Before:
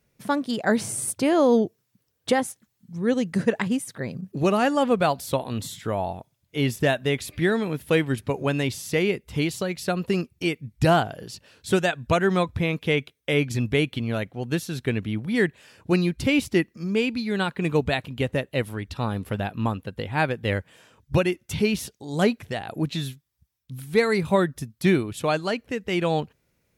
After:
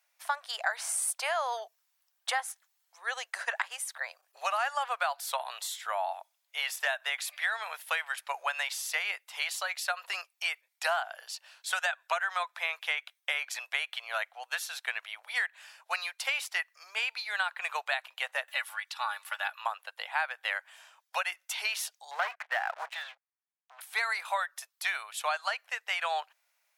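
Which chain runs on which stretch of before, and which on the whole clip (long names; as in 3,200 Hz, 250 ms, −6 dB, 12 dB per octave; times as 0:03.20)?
0:18.48–0:19.61: high-pass filter 940 Hz + upward compression, threshold −42 dBFS + comb filter 3.5 ms, depth 57%
0:22.11–0:23.81: transistor ladder low-pass 2,500 Hz, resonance 25% + leveller curve on the samples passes 3
whole clip: Butterworth high-pass 680 Hz 48 dB per octave; dynamic equaliser 1,500 Hz, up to +6 dB, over −43 dBFS, Q 1.7; downward compressor 6 to 1, threshold −27 dBFS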